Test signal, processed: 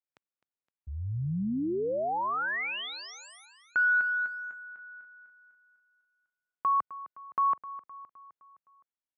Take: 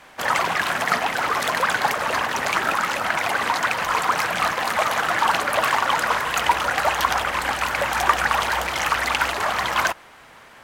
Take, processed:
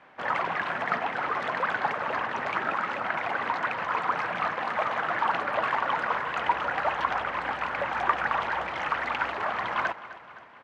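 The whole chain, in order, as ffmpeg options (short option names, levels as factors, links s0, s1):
-af "highpass=100,lowpass=2200,aecho=1:1:258|516|774|1032|1290:0.158|0.0872|0.0479|0.0264|0.0145,volume=0.501"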